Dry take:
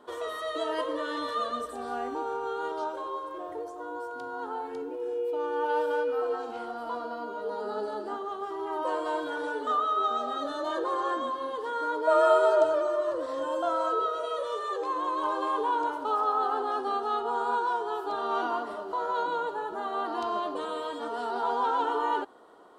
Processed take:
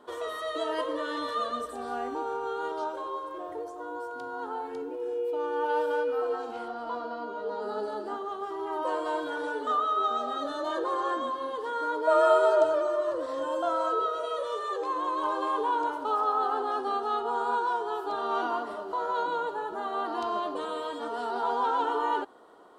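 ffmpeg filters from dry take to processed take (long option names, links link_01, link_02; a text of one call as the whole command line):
ffmpeg -i in.wav -filter_complex "[0:a]asettb=1/sr,asplit=3[link_01][link_02][link_03];[link_01]atrim=end=6.684[link_04];[link_02]atrim=start=6.68:end=7.62,asetpts=PTS-STARTPTS,afade=type=in:duration=0.004:curve=qsin,afade=type=out:start_time=0.936:duration=0.004:curve=qsin,lowpass=6300[link_05];[link_03]atrim=start=7.616[link_06];[link_04][link_05]acrossfade=duration=0.004:curve1=hsin:curve2=qsin[link_07];[link_07][link_06]acrossfade=duration=0.004:curve1=qsin:curve2=hsin" out.wav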